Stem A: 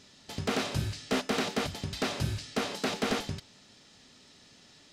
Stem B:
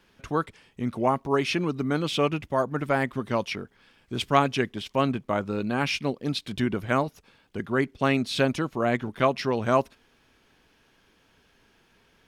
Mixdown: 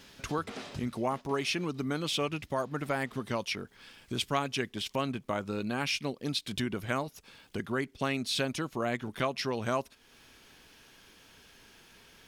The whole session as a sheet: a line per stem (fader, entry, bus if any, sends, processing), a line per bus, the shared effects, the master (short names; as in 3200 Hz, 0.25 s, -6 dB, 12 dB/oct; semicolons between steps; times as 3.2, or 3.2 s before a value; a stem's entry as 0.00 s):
+0.5 dB, 0.00 s, no send, high shelf 9200 Hz -9.5 dB; auto duck -19 dB, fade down 1.75 s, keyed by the second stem
+2.5 dB, 0.00 s, no send, high shelf 3100 Hz +10 dB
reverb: off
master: compressor 2:1, threshold -37 dBFS, peak gain reduction 14.5 dB